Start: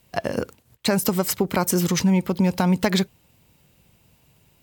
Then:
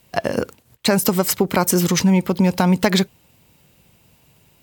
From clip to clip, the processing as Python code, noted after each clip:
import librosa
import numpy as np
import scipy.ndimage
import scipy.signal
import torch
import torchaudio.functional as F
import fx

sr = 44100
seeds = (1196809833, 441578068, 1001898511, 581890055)

y = fx.low_shelf(x, sr, hz=110.0, db=-4.5)
y = y * librosa.db_to_amplitude(4.5)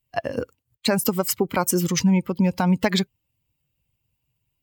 y = fx.bin_expand(x, sr, power=1.5)
y = y * librosa.db_to_amplitude(-2.0)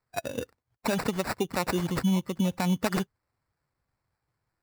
y = fx.sample_hold(x, sr, seeds[0], rate_hz=3200.0, jitter_pct=0)
y = y * librosa.db_to_amplitude(-6.5)